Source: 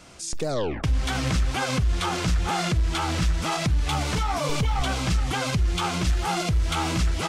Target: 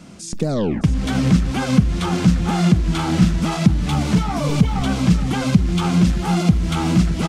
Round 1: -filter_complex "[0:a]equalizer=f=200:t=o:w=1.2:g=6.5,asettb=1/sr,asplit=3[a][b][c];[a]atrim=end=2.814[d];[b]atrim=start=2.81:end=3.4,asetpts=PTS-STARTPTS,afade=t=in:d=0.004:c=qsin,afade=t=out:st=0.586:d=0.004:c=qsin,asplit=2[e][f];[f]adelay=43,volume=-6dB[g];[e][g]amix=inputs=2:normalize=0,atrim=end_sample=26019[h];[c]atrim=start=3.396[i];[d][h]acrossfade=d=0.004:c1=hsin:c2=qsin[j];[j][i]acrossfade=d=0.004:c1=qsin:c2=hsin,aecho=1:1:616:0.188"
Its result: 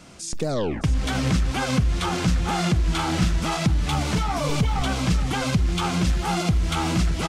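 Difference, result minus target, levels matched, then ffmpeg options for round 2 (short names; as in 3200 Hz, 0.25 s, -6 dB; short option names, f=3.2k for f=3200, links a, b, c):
250 Hz band -3.5 dB
-filter_complex "[0:a]equalizer=f=200:t=o:w=1.2:g=17.5,asettb=1/sr,asplit=3[a][b][c];[a]atrim=end=2.814[d];[b]atrim=start=2.81:end=3.4,asetpts=PTS-STARTPTS,afade=t=in:d=0.004:c=qsin,afade=t=out:st=0.586:d=0.004:c=qsin,asplit=2[e][f];[f]adelay=43,volume=-6dB[g];[e][g]amix=inputs=2:normalize=0,atrim=end_sample=26019[h];[c]atrim=start=3.396[i];[d][h]acrossfade=d=0.004:c1=hsin:c2=qsin[j];[j][i]acrossfade=d=0.004:c1=qsin:c2=hsin,aecho=1:1:616:0.188"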